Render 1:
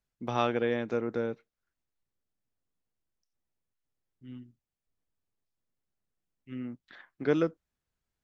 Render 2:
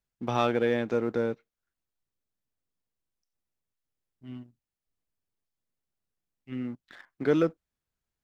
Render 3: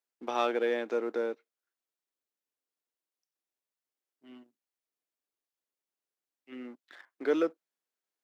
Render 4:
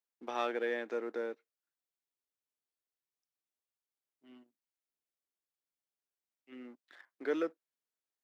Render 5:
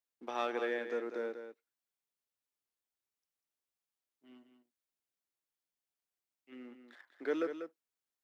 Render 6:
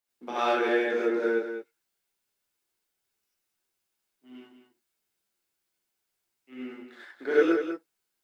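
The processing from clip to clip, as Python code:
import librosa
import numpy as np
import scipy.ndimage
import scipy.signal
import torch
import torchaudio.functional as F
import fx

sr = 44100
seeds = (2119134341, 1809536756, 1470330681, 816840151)

y1 = fx.leveller(x, sr, passes=1)
y2 = scipy.signal.sosfilt(scipy.signal.butter(4, 300.0, 'highpass', fs=sr, output='sos'), y1)
y2 = y2 * 10.0 ** (-2.5 / 20.0)
y3 = fx.dynamic_eq(y2, sr, hz=1800.0, q=3.2, threshold_db=-53.0, ratio=4.0, max_db=6)
y3 = y3 * 10.0 ** (-6.0 / 20.0)
y4 = y3 + 10.0 ** (-9.0 / 20.0) * np.pad(y3, (int(193 * sr / 1000.0), 0))[:len(y3)]
y4 = y4 * 10.0 ** (-1.0 / 20.0)
y5 = fx.rev_gated(y4, sr, seeds[0], gate_ms=120, shape='rising', drr_db=-7.5)
y5 = y5 * 10.0 ** (3.0 / 20.0)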